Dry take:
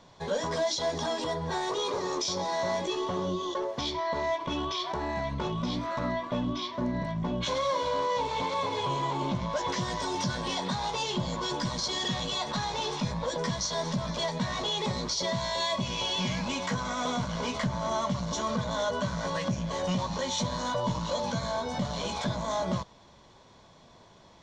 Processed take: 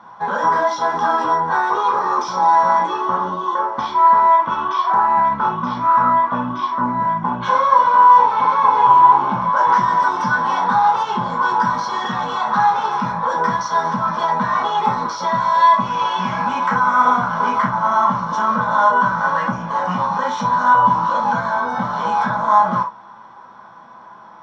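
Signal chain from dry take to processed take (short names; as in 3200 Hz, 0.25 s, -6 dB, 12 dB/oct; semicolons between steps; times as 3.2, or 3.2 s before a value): band shelf 1100 Hz +14.5 dB 1.3 oct; reverb, pre-delay 3 ms, DRR -2 dB; gain -7.5 dB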